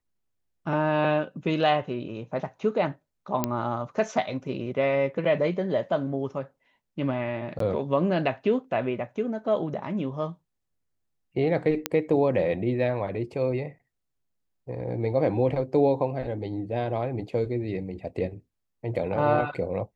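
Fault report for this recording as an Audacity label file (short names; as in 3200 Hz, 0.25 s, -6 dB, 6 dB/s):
3.440000	3.440000	pop -9 dBFS
7.590000	7.600000	gap 13 ms
11.860000	11.860000	pop -7 dBFS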